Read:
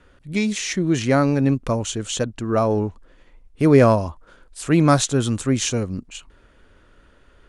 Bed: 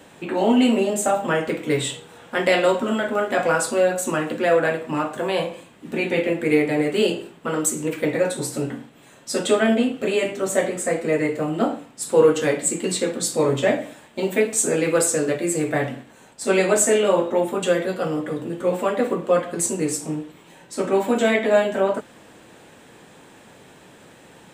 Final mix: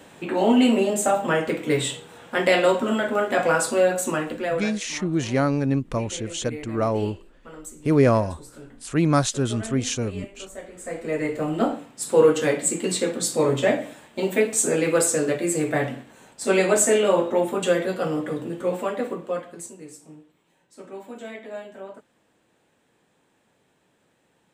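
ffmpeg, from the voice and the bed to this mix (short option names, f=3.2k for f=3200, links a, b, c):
-filter_complex "[0:a]adelay=4250,volume=-4dB[a];[1:a]volume=16.5dB,afade=t=out:st=4.01:d=0.78:silence=0.133352,afade=t=in:st=10.7:d=0.81:silence=0.141254,afade=t=out:st=18.3:d=1.45:silence=0.133352[b];[a][b]amix=inputs=2:normalize=0"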